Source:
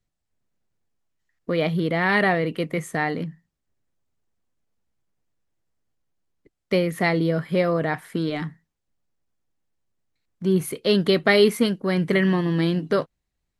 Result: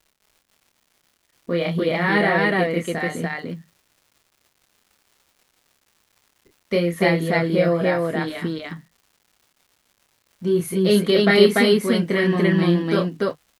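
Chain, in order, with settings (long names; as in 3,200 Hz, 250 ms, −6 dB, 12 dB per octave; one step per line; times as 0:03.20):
notch comb filter 150 Hz
surface crackle 160 per second −47 dBFS
loudspeakers that aren't time-aligned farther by 10 metres −4 dB, 100 metres 0 dB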